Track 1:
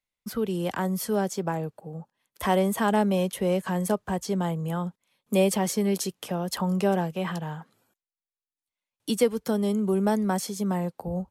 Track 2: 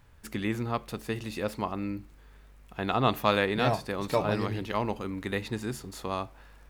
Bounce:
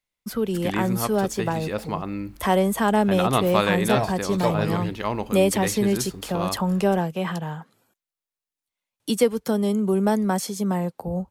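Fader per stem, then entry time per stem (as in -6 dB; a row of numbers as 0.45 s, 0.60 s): +3.0 dB, +3.0 dB; 0.00 s, 0.30 s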